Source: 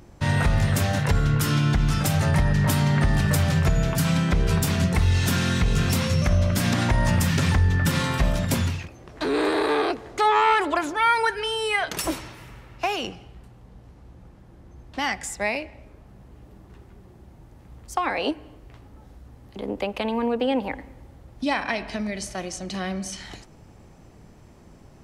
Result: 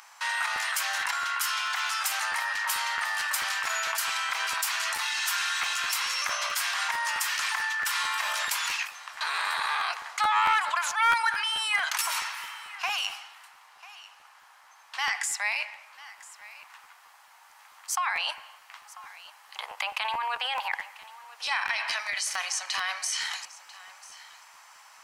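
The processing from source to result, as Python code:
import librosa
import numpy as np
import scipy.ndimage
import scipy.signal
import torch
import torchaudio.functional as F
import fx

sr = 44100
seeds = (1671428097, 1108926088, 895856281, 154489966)

p1 = scipy.signal.sosfilt(scipy.signal.butter(6, 920.0, 'highpass', fs=sr, output='sos'), x)
p2 = fx.notch(p1, sr, hz=3600.0, q=26.0)
p3 = fx.over_compress(p2, sr, threshold_db=-39.0, ratio=-1.0)
p4 = p2 + (p3 * librosa.db_to_amplitude(2.5))
p5 = np.clip(10.0 ** (15.0 / 20.0) * p4, -1.0, 1.0) / 10.0 ** (15.0 / 20.0)
p6 = p5 + fx.echo_single(p5, sr, ms=993, db=-18.5, dry=0)
p7 = fx.buffer_crackle(p6, sr, first_s=0.55, period_s=0.22, block=512, kind='repeat')
y = p7 * librosa.db_to_amplitude(-2.0)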